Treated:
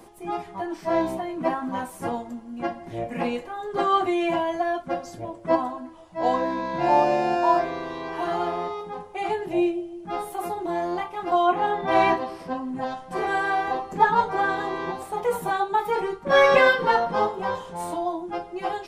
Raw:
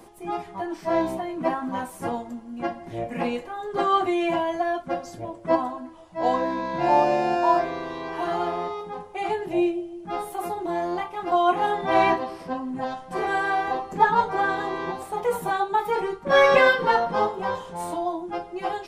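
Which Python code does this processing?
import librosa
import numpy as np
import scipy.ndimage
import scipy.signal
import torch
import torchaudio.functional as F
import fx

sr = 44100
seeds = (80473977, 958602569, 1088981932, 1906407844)

y = fx.high_shelf(x, sr, hz=5900.0, db=-12.0, at=(11.46, 11.88))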